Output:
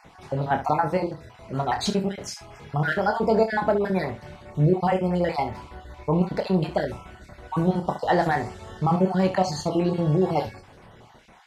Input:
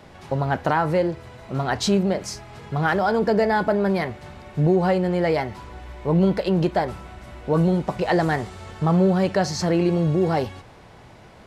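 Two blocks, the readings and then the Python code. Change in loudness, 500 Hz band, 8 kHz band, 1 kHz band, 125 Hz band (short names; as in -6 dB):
-2.5 dB, -3.0 dB, n/a, 0.0 dB, -2.5 dB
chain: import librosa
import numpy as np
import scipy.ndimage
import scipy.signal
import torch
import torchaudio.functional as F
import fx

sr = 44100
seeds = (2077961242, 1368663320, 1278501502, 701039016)

y = fx.spec_dropout(x, sr, seeds[0], share_pct=34)
y = fx.dynamic_eq(y, sr, hz=820.0, q=2.2, threshold_db=-38.0, ratio=4.0, max_db=5)
y = fx.room_early_taps(y, sr, ms=(27, 68), db=(-7.0, -12.0))
y = F.gain(torch.from_numpy(y), -2.5).numpy()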